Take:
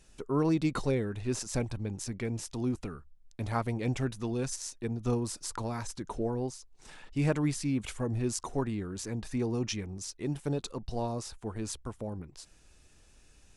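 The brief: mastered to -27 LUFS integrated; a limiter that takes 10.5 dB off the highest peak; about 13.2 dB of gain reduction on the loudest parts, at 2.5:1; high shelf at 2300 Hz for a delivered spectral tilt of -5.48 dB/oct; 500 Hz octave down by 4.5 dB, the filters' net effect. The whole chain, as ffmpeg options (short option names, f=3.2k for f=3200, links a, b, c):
-af "equalizer=f=500:t=o:g=-5.5,highshelf=f=2.3k:g=-8,acompressor=threshold=-46dB:ratio=2.5,volume=23.5dB,alimiter=limit=-17dB:level=0:latency=1"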